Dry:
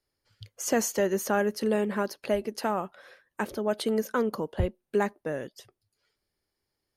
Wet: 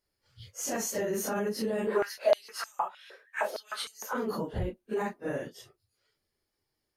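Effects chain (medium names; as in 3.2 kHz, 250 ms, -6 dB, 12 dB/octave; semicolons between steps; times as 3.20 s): phase randomisation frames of 100 ms; peak limiter -23.5 dBFS, peak gain reduction 9 dB; 1.87–4.13 s: step-sequenced high-pass 6.5 Hz 410–6100 Hz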